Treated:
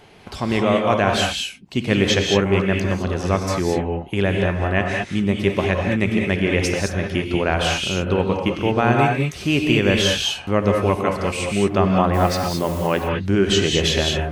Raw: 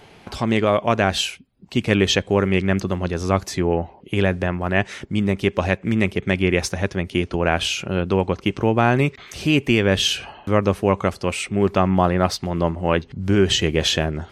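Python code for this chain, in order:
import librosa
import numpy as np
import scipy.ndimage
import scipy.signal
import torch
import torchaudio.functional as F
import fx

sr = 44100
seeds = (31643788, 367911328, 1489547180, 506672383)

y = fx.dmg_noise_colour(x, sr, seeds[0], colour='white', level_db=-41.0, at=(12.13, 12.86), fade=0.02)
y = fx.rev_gated(y, sr, seeds[1], gate_ms=240, shape='rising', drr_db=1.0)
y = y * librosa.db_to_amplitude(-1.5)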